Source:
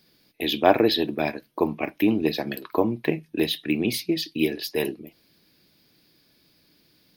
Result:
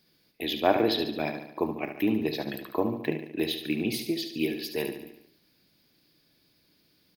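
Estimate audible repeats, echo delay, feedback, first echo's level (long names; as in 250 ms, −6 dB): 5, 72 ms, 54%, −8.5 dB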